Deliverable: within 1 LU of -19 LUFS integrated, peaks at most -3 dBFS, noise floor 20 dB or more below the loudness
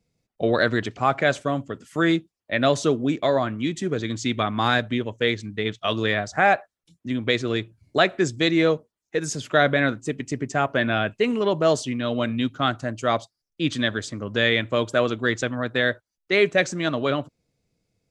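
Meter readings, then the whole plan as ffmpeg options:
loudness -23.5 LUFS; peak level -5.0 dBFS; loudness target -19.0 LUFS
-> -af "volume=1.68,alimiter=limit=0.708:level=0:latency=1"

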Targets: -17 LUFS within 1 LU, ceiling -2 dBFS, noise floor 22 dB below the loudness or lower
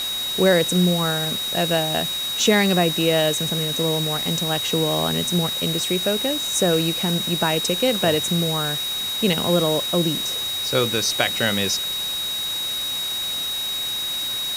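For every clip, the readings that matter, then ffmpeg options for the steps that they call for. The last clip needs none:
steady tone 3.8 kHz; tone level -24 dBFS; noise floor -26 dBFS; noise floor target -43 dBFS; loudness -20.5 LUFS; peak level -2.5 dBFS; loudness target -17.0 LUFS
-> -af "bandreject=f=3800:w=30"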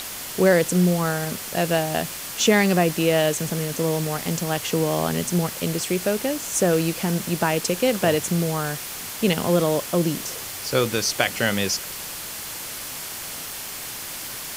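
steady tone not found; noise floor -34 dBFS; noise floor target -45 dBFS
-> -af "afftdn=nr=11:nf=-34"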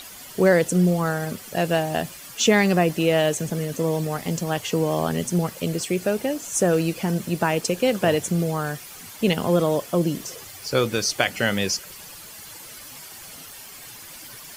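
noise floor -41 dBFS; noise floor target -45 dBFS
-> -af "afftdn=nr=6:nf=-41"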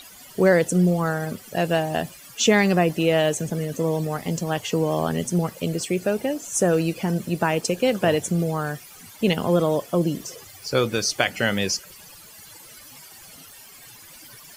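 noise floor -46 dBFS; loudness -23.0 LUFS; peak level -3.0 dBFS; loudness target -17.0 LUFS
-> -af "volume=2,alimiter=limit=0.794:level=0:latency=1"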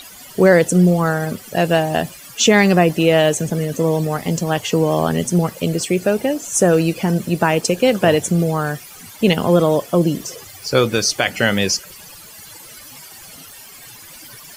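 loudness -17.0 LUFS; peak level -2.0 dBFS; noise floor -40 dBFS

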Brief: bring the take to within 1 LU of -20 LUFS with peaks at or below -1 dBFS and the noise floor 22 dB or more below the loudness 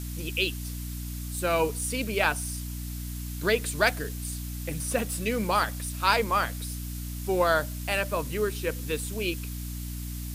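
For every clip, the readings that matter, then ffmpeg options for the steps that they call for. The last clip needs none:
hum 60 Hz; highest harmonic 300 Hz; hum level -33 dBFS; noise floor -35 dBFS; noise floor target -51 dBFS; loudness -28.5 LUFS; peak level -8.0 dBFS; loudness target -20.0 LUFS
-> -af "bandreject=f=60:t=h:w=4,bandreject=f=120:t=h:w=4,bandreject=f=180:t=h:w=4,bandreject=f=240:t=h:w=4,bandreject=f=300:t=h:w=4"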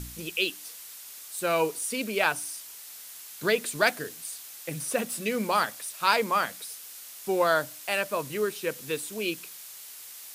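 hum not found; noise floor -45 dBFS; noise floor target -51 dBFS
-> -af "afftdn=nr=6:nf=-45"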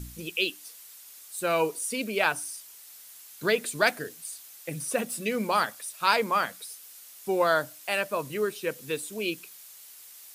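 noise floor -49 dBFS; noise floor target -51 dBFS
-> -af "afftdn=nr=6:nf=-49"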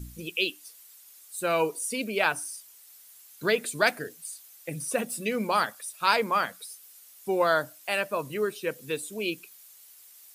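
noise floor -53 dBFS; loudness -28.5 LUFS; peak level -8.0 dBFS; loudness target -20.0 LUFS
-> -af "volume=2.66,alimiter=limit=0.891:level=0:latency=1"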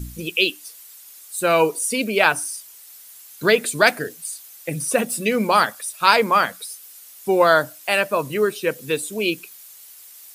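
loudness -20.0 LUFS; peak level -1.0 dBFS; noise floor -44 dBFS

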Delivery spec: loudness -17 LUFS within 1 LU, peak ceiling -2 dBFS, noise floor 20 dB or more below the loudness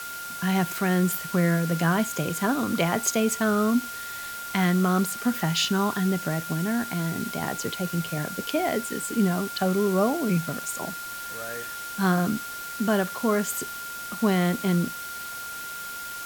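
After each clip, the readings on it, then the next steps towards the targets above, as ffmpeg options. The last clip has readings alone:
steady tone 1.4 kHz; tone level -35 dBFS; noise floor -36 dBFS; noise floor target -46 dBFS; loudness -26.0 LUFS; peak level -9.0 dBFS; loudness target -17.0 LUFS
-> -af "bandreject=f=1400:w=30"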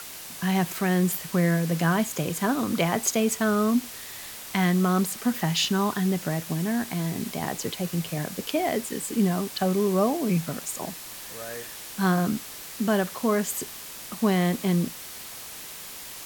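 steady tone not found; noise floor -40 dBFS; noise floor target -46 dBFS
-> -af "afftdn=nr=6:nf=-40"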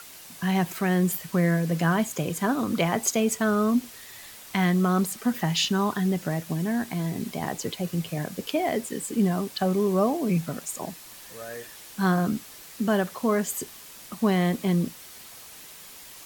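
noise floor -45 dBFS; noise floor target -46 dBFS
-> -af "afftdn=nr=6:nf=-45"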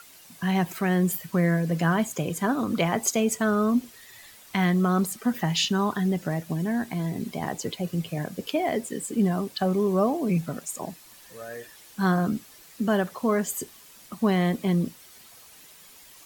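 noise floor -51 dBFS; loudness -26.0 LUFS; peak level -9.5 dBFS; loudness target -17.0 LUFS
-> -af "volume=2.82,alimiter=limit=0.794:level=0:latency=1"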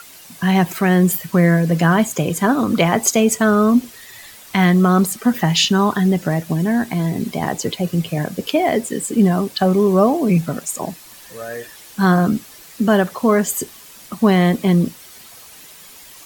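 loudness -17.0 LUFS; peak level -2.0 dBFS; noise floor -42 dBFS

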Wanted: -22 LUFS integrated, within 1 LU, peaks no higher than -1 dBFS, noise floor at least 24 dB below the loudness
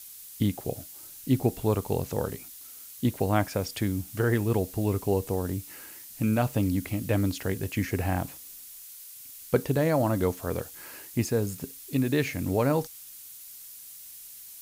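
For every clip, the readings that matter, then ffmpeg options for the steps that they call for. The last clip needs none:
noise floor -46 dBFS; noise floor target -53 dBFS; loudness -28.5 LUFS; peak level -10.0 dBFS; loudness target -22.0 LUFS
-> -af "afftdn=nr=7:nf=-46"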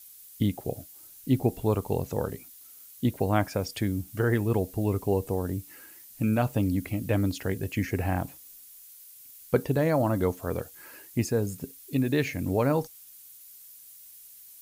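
noise floor -50 dBFS; noise floor target -53 dBFS
-> -af "afftdn=nr=6:nf=-50"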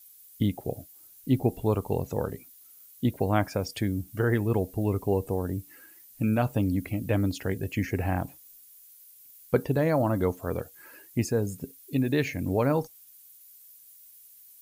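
noise floor -53 dBFS; loudness -28.5 LUFS; peak level -10.0 dBFS; loudness target -22.0 LUFS
-> -af "volume=2.11"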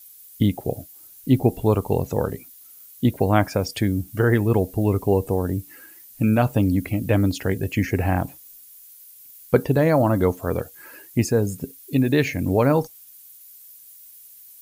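loudness -22.0 LUFS; peak level -3.5 dBFS; noise floor -47 dBFS

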